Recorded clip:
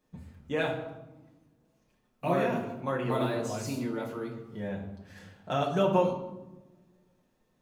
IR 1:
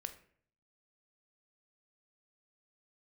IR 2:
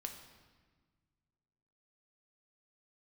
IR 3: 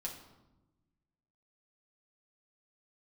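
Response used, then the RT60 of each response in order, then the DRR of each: 3; 0.55, 1.5, 1.0 seconds; 8.0, 3.5, −3.0 decibels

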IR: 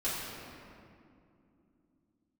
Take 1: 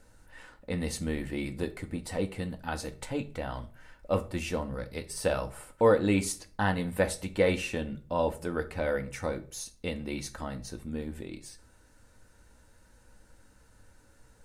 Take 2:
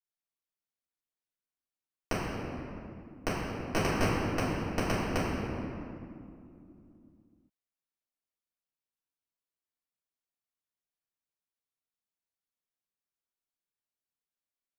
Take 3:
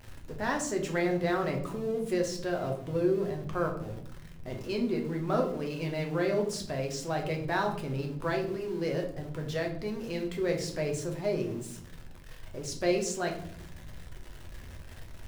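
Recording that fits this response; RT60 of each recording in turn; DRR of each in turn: 2; 0.40, 2.6, 0.65 seconds; 6.5, −12.0, 1.0 decibels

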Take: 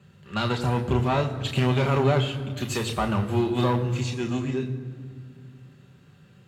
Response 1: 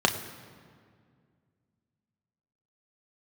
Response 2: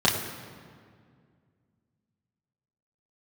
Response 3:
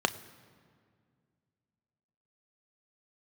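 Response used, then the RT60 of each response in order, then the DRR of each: 1; 2.1, 2.1, 2.1 seconds; 3.5, −5.5, 10.5 decibels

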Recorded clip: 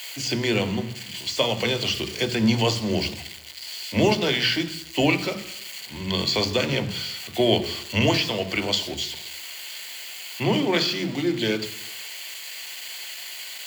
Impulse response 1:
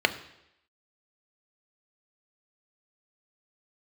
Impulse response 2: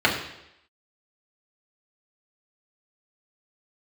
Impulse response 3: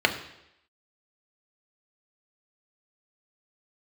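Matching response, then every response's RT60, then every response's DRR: 1; 0.80, 0.80, 0.80 seconds; 8.0, −4.0, 4.0 decibels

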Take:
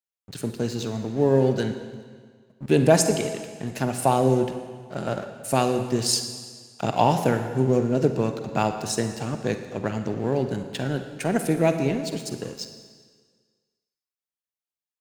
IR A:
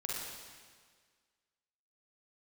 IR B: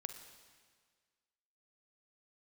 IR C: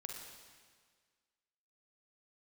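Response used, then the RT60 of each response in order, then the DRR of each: B; 1.7, 1.7, 1.7 seconds; −4.5, 7.0, 0.5 decibels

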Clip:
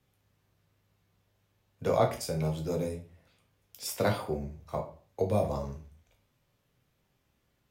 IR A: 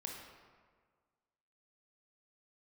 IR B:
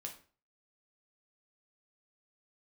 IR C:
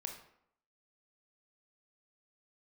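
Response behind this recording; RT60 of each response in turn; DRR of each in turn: B; 1.7, 0.40, 0.70 seconds; −0.5, 1.5, 3.0 decibels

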